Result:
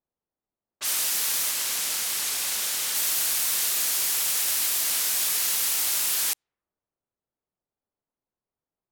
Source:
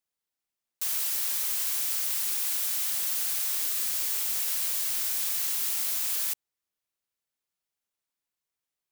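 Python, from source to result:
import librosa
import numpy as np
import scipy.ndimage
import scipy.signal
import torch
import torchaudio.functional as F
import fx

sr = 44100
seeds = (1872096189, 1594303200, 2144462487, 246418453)

y = fx.env_lowpass(x, sr, base_hz=760.0, full_db=-26.5)
y = fx.high_shelf(y, sr, hz=12000.0, db=fx.steps((0.0, -4.5), (1.49, -11.0), (2.94, -3.0)))
y = fx.record_warp(y, sr, rpm=45.0, depth_cents=100.0)
y = y * 10.0 ** (8.0 / 20.0)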